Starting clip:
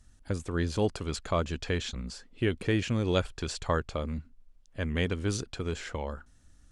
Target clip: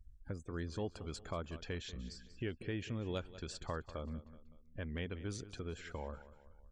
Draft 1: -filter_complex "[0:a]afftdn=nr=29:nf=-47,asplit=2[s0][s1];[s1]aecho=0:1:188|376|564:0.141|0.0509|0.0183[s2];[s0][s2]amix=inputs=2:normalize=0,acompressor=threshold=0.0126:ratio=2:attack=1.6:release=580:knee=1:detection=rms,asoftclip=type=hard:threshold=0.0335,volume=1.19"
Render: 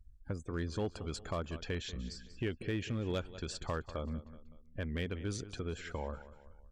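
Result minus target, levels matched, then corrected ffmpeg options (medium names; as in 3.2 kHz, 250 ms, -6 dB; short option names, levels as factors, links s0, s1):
compression: peak gain reduction -4.5 dB
-filter_complex "[0:a]afftdn=nr=29:nf=-47,asplit=2[s0][s1];[s1]aecho=0:1:188|376|564:0.141|0.0509|0.0183[s2];[s0][s2]amix=inputs=2:normalize=0,acompressor=threshold=0.00473:ratio=2:attack=1.6:release=580:knee=1:detection=rms,asoftclip=type=hard:threshold=0.0335,volume=1.19"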